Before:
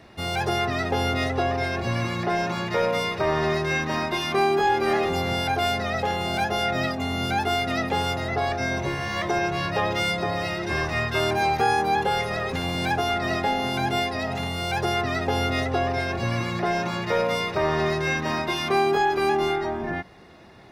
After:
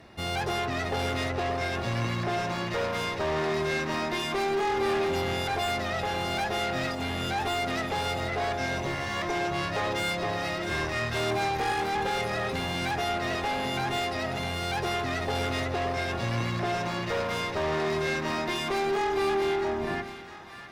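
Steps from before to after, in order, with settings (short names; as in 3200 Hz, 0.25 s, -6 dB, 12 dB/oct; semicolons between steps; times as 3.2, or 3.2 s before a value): tube stage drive 25 dB, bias 0.5; split-band echo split 940 Hz, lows 0.112 s, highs 0.657 s, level -10.5 dB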